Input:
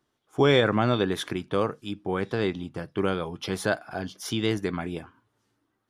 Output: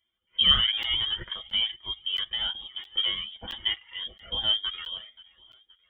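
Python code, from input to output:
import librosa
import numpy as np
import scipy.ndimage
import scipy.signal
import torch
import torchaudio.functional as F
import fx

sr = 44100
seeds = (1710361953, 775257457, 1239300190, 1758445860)

y = fx.peak_eq(x, sr, hz=610.0, db=3.5, octaves=2.9)
y = fx.fixed_phaser(y, sr, hz=360.0, stages=4)
y = y + 0.65 * np.pad(y, (int(6.7 * sr / 1000.0), 0))[:len(y)]
y = fx.freq_invert(y, sr, carrier_hz=3500)
y = fx.echo_feedback(y, sr, ms=527, feedback_pct=47, wet_db=-23.0)
y = fx.buffer_crackle(y, sr, first_s=0.83, period_s=0.67, block=512, kind='zero')
y = fx.comb_cascade(y, sr, direction='rising', hz=1.1)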